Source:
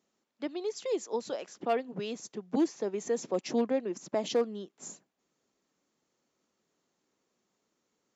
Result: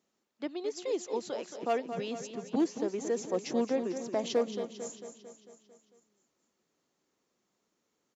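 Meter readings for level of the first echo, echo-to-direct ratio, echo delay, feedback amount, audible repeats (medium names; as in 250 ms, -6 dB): -9.5 dB, -7.5 dB, 224 ms, 58%, 6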